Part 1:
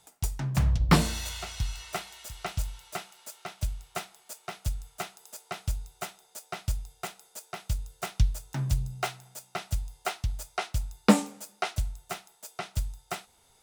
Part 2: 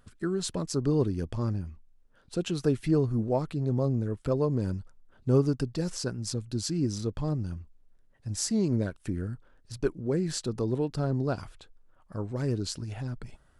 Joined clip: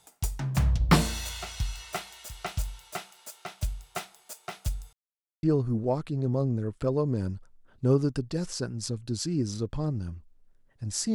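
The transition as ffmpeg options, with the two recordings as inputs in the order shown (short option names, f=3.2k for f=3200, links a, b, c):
-filter_complex "[0:a]apad=whole_dur=11.14,atrim=end=11.14,asplit=2[a][b];[a]atrim=end=4.93,asetpts=PTS-STARTPTS,afade=t=out:st=4.926:d=0.004:c=hsin[c];[b]atrim=start=4.93:end=5.43,asetpts=PTS-STARTPTS,volume=0[d];[1:a]atrim=start=2.87:end=8.58,asetpts=PTS-STARTPTS,afade=t=in:d=0.004:c=hsin[e];[c][d][e]concat=n=3:v=0:a=1"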